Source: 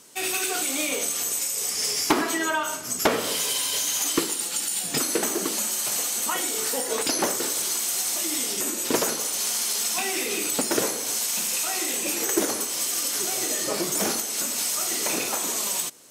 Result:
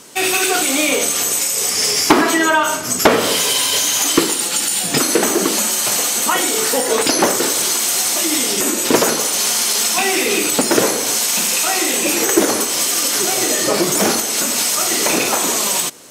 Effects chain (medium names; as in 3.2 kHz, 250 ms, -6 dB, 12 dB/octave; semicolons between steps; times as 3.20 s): treble shelf 5.2 kHz -5.5 dB; in parallel at -1 dB: peak limiter -20.5 dBFS, peak gain reduction 9 dB; on the sum: trim +7.5 dB